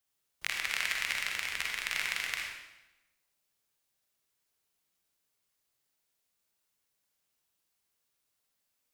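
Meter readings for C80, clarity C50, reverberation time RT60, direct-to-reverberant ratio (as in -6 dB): 4.0 dB, 0.5 dB, 1.0 s, -0.5 dB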